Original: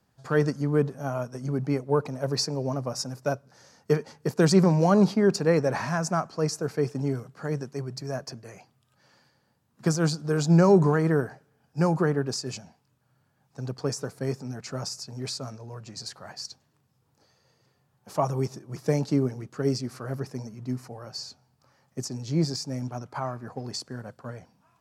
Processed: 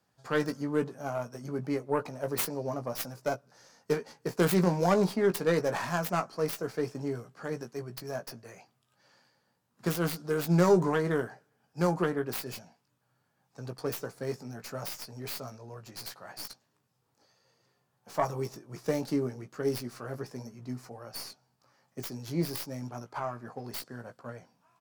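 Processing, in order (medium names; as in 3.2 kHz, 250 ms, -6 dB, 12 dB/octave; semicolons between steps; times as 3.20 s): tracing distortion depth 0.39 ms; bass shelf 180 Hz -10 dB; doubling 17 ms -7.5 dB; trim -3 dB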